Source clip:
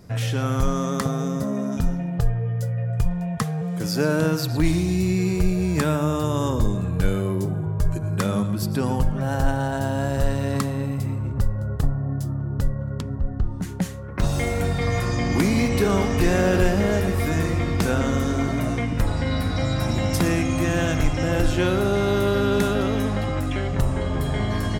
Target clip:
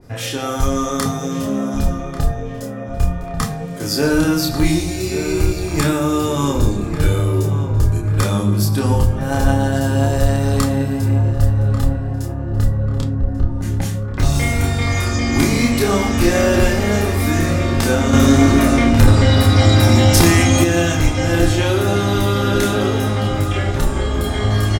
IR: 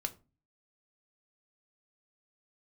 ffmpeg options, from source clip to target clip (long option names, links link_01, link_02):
-filter_complex "[0:a]asplit=2[link_01][link_02];[link_02]adelay=29,volume=-3dB[link_03];[link_01][link_03]amix=inputs=2:normalize=0,asplit=2[link_04][link_05];[link_05]adelay=1141,lowpass=frequency=2900:poles=1,volume=-10.5dB,asplit=2[link_06][link_07];[link_07]adelay=1141,lowpass=frequency=2900:poles=1,volume=0.48,asplit=2[link_08][link_09];[link_09]adelay=1141,lowpass=frequency=2900:poles=1,volume=0.48,asplit=2[link_10][link_11];[link_11]adelay=1141,lowpass=frequency=2900:poles=1,volume=0.48,asplit=2[link_12][link_13];[link_13]adelay=1141,lowpass=frequency=2900:poles=1,volume=0.48[link_14];[link_04][link_06][link_08][link_10][link_12][link_14]amix=inputs=6:normalize=0[link_15];[1:a]atrim=start_sample=2205,asetrate=36603,aresample=44100[link_16];[link_15][link_16]afir=irnorm=-1:irlink=0,asettb=1/sr,asplit=3[link_17][link_18][link_19];[link_17]atrim=end=18.134[link_20];[link_18]atrim=start=18.13:end=20.64,asetpts=PTS-STARTPTS,afade=type=in:duration=0.004:curve=qsin,afade=type=out:start_time=2.506:duration=0.004:curve=qsin,acontrast=58[link_21];[link_19]atrim=start=20.636[link_22];[link_20][link_21]acrossfade=duration=0.004:curve1=hsin:curve2=qsin[link_23];[link_23][link_22]acrossfade=duration=0.004:curve1=qsin:curve2=hsin,adynamicequalizer=threshold=0.0126:dfrequency=3000:dqfactor=0.7:tfrequency=3000:tqfactor=0.7:attack=5:release=100:ratio=0.375:range=2.5:mode=boostabove:tftype=highshelf,volume=1.5dB"